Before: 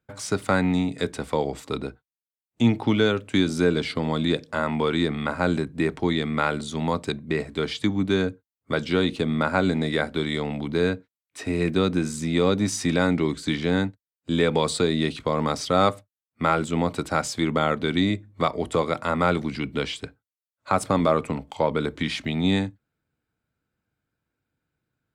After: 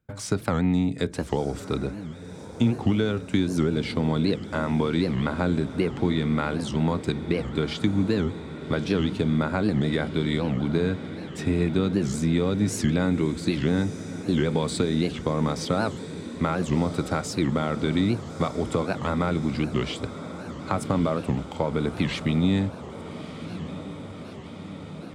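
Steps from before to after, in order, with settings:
downward compressor 4 to 1, threshold −23 dBFS, peak gain reduction 8.5 dB
low-shelf EQ 290 Hz +9.5 dB
on a send: feedback delay with all-pass diffusion 1,254 ms, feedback 71%, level −13 dB
on the sum: wow of a warped record 78 rpm, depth 250 cents
level −1.5 dB

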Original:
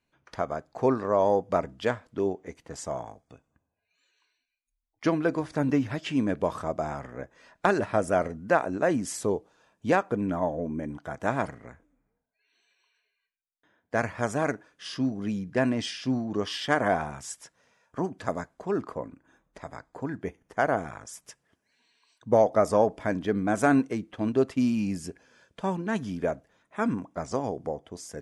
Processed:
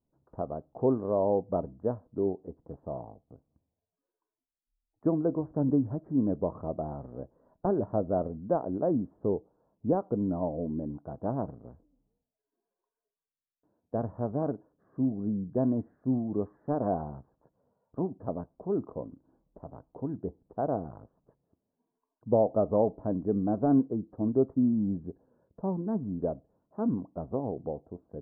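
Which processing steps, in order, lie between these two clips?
de-essing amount 85%
Gaussian smoothing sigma 11 samples

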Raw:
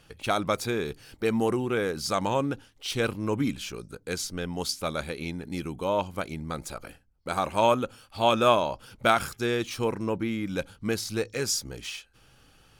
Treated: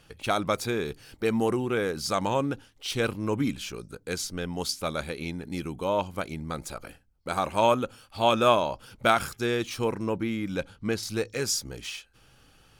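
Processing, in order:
0:10.56–0:11.03: high-shelf EQ 9,000 Hz −11.5 dB

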